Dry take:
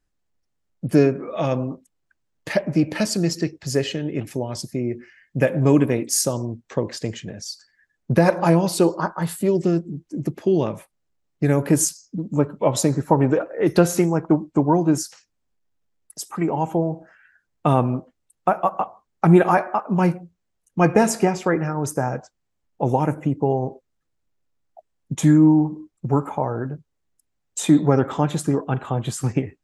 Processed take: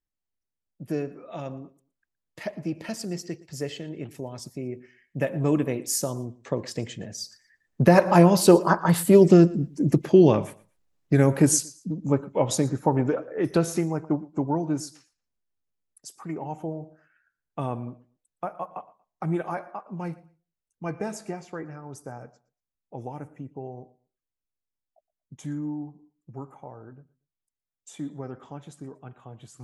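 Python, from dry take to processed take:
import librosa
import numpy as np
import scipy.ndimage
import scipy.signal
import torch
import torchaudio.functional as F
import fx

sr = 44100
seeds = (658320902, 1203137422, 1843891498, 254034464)

p1 = fx.doppler_pass(x, sr, speed_mps=13, closest_m=13.0, pass_at_s=9.49)
p2 = p1 + fx.echo_feedback(p1, sr, ms=117, feedback_pct=25, wet_db=-21.5, dry=0)
y = F.gain(torch.from_numpy(p2), 5.5).numpy()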